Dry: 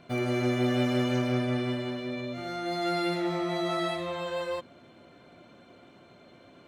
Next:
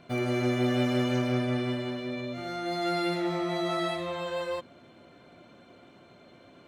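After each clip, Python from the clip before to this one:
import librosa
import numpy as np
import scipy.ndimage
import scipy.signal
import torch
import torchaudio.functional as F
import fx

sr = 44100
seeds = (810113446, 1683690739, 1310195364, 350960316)

y = x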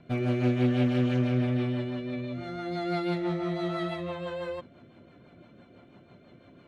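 y = fx.bass_treble(x, sr, bass_db=6, treble_db=-9)
y = fx.rotary(y, sr, hz=6.0)
y = fx.doppler_dist(y, sr, depth_ms=0.14)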